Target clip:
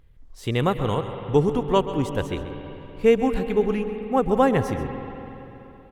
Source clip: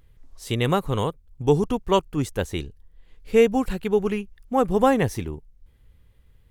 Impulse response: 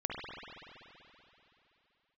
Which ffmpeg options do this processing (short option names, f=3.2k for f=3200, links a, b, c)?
-filter_complex "[0:a]highshelf=f=4.7k:g=-8,atempo=1.1,asplit=2[a][b];[1:a]atrim=start_sample=2205,adelay=132[c];[b][c]afir=irnorm=-1:irlink=0,volume=-12.5dB[d];[a][d]amix=inputs=2:normalize=0"